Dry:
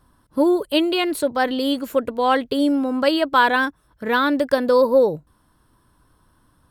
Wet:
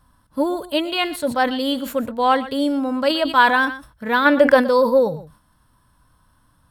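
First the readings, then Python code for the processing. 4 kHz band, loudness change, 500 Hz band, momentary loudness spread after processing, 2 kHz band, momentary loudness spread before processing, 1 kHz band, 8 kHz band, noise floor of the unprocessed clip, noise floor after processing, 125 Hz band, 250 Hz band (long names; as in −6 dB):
+1.0 dB, +1.0 dB, +0.5 dB, 9 LU, +3.0 dB, 6 LU, +2.0 dB, can't be measured, −61 dBFS, −60 dBFS, +2.5 dB, −0.5 dB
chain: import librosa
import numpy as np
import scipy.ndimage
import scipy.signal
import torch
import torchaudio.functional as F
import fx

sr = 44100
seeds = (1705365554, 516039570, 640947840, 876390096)

p1 = fx.peak_eq(x, sr, hz=370.0, db=-10.5, octaves=0.69)
p2 = fx.spec_box(p1, sr, start_s=4.26, length_s=0.31, low_hz=300.0, high_hz=3400.0, gain_db=8)
p3 = p2 + fx.echo_single(p2, sr, ms=120, db=-18.0, dry=0)
p4 = fx.hpss(p3, sr, part='harmonic', gain_db=6)
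p5 = fx.sustainer(p4, sr, db_per_s=130.0)
y = p5 * 10.0 ** (-3.0 / 20.0)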